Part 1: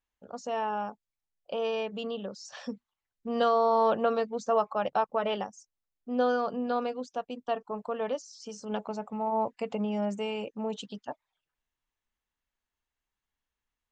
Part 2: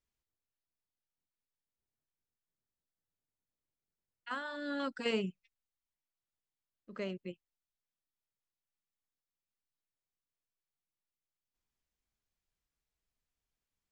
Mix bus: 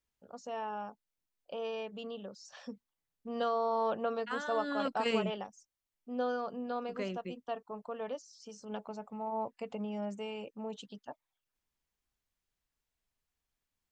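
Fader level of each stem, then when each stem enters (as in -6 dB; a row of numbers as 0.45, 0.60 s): -7.5, +1.0 dB; 0.00, 0.00 s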